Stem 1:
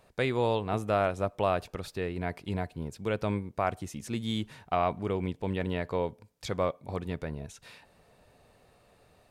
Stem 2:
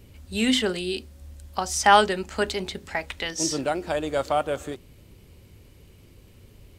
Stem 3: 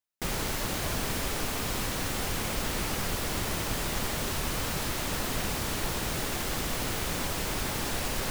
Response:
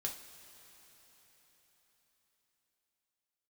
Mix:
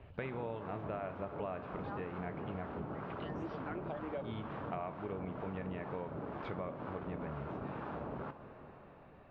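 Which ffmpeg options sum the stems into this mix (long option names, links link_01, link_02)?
-filter_complex "[0:a]volume=-3dB,asplit=3[link_01][link_02][link_03];[link_01]atrim=end=2.85,asetpts=PTS-STARTPTS,afade=type=out:start_time=2.846:duration=0.004:curve=hsin[link_04];[link_02]atrim=start=2.85:end=4.24,asetpts=PTS-STARTPTS,volume=0[link_05];[link_03]atrim=start=4.24,asetpts=PTS-STARTPTS,afade=type=in:duration=0.004:curve=hsin[link_06];[link_04][link_05][link_06]concat=n=3:v=0:a=1,asplit=3[link_07][link_08][link_09];[link_08]volume=-3dB[link_10];[1:a]asplit=2[link_11][link_12];[link_12]afreqshift=2.9[link_13];[link_11][link_13]amix=inputs=2:normalize=1,volume=-3.5dB[link_14];[2:a]highpass=110,afwtdn=0.0224,acrossover=split=780[link_15][link_16];[link_15]aeval=exprs='val(0)*(1-0.5/2+0.5/2*cos(2*PI*2.1*n/s))':channel_layout=same[link_17];[link_16]aeval=exprs='val(0)*(1-0.5/2-0.5/2*cos(2*PI*2.1*n/s))':channel_layout=same[link_18];[link_17][link_18]amix=inputs=2:normalize=0,volume=0dB,asplit=2[link_19][link_20];[link_20]volume=-3dB[link_21];[link_09]apad=whole_len=299220[link_22];[link_14][link_22]sidechaincompress=threshold=-58dB:ratio=8:attack=16:release=314[link_23];[3:a]atrim=start_sample=2205[link_24];[link_10][link_21]amix=inputs=2:normalize=0[link_25];[link_25][link_24]afir=irnorm=-1:irlink=0[link_26];[link_07][link_23][link_19][link_26]amix=inputs=4:normalize=0,lowpass=frequency=2600:width=0.5412,lowpass=frequency=2600:width=1.3066,acompressor=threshold=-40dB:ratio=4"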